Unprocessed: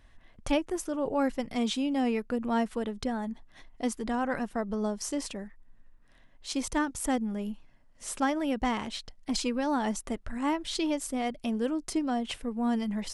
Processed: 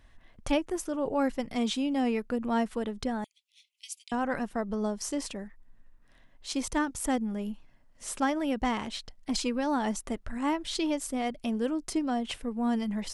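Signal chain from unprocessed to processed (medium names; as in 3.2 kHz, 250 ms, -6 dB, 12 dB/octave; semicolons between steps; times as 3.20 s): 3.24–4.12 s: steep high-pass 2.3 kHz 96 dB/octave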